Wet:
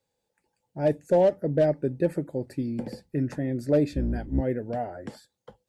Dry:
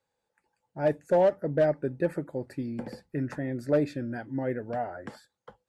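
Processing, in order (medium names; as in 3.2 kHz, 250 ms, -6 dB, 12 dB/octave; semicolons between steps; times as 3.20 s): 3.92–4.41 s: octave divider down 2 oct, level +2 dB; peaking EQ 1.3 kHz -10 dB 1.5 oct; trim +4.5 dB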